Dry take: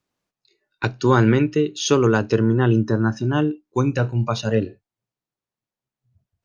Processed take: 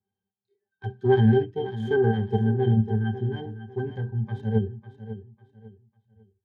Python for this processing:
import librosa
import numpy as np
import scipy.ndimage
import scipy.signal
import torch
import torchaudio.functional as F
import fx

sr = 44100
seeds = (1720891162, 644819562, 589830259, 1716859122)

p1 = fx.self_delay(x, sr, depth_ms=0.44)
p2 = fx.level_steps(p1, sr, step_db=17)
p3 = p1 + (p2 * librosa.db_to_amplitude(1.0))
p4 = fx.octave_resonator(p3, sr, note='G', decay_s=0.1)
p5 = fx.echo_feedback(p4, sr, ms=549, feedback_pct=30, wet_db=-13.0)
y = fx.hpss(p5, sr, part='percussive', gain_db=-9)